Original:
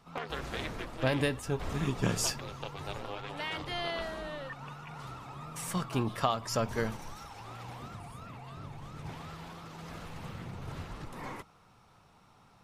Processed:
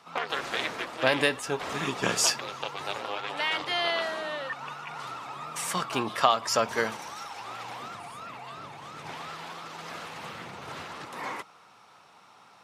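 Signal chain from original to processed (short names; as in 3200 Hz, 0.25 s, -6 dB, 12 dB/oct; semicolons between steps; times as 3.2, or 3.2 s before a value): weighting filter A; gain +8 dB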